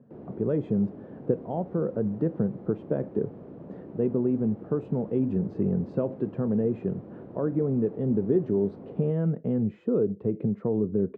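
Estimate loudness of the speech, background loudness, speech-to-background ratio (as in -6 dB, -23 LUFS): -28.0 LUFS, -44.5 LUFS, 16.5 dB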